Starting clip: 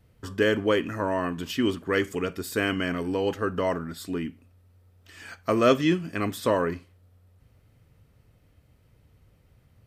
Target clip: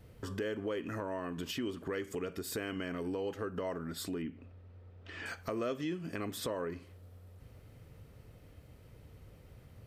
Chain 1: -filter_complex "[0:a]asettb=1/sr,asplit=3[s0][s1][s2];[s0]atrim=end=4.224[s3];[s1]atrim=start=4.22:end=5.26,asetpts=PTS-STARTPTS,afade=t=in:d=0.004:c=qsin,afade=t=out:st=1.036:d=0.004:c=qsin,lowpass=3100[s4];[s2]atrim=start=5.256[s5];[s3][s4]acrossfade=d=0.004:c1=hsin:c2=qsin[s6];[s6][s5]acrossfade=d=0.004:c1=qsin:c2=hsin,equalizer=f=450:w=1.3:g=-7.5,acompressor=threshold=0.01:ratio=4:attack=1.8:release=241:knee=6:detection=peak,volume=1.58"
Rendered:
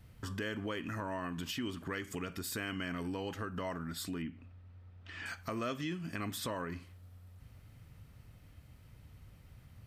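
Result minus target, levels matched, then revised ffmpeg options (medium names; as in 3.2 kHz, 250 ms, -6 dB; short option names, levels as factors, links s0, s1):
500 Hz band -4.5 dB
-filter_complex "[0:a]asettb=1/sr,asplit=3[s0][s1][s2];[s0]atrim=end=4.224[s3];[s1]atrim=start=4.22:end=5.26,asetpts=PTS-STARTPTS,afade=t=in:d=0.004:c=qsin,afade=t=out:st=1.036:d=0.004:c=qsin,lowpass=3100[s4];[s2]atrim=start=5.256[s5];[s3][s4]acrossfade=d=0.004:c1=hsin:c2=qsin[s6];[s6][s5]acrossfade=d=0.004:c1=qsin:c2=hsin,equalizer=f=450:w=1.3:g=4,acompressor=threshold=0.01:ratio=4:attack=1.8:release=241:knee=6:detection=peak,volume=1.58"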